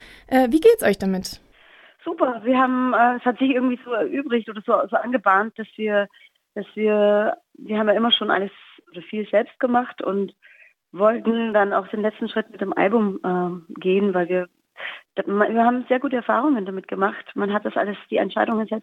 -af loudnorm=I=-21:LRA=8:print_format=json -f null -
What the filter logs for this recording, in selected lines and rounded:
"input_i" : "-21.4",
"input_tp" : "-3.4",
"input_lra" : "2.1",
"input_thresh" : "-31.9",